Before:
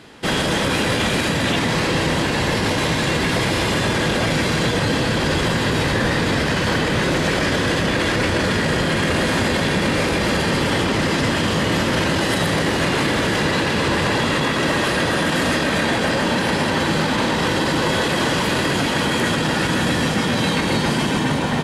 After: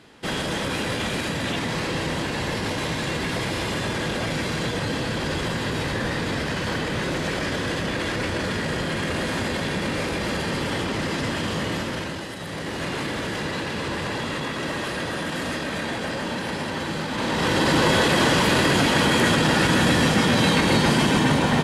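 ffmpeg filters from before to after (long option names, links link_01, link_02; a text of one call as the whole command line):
ffmpeg -i in.wav -af "volume=9.5dB,afade=type=out:start_time=11.64:duration=0.71:silence=0.354813,afade=type=in:start_time=12.35:duration=0.53:silence=0.446684,afade=type=in:start_time=17.1:duration=0.65:silence=0.334965" out.wav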